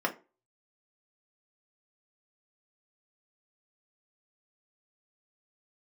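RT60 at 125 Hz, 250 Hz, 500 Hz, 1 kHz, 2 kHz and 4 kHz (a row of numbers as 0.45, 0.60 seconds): 0.30, 0.35, 0.35, 0.30, 0.25, 0.20 seconds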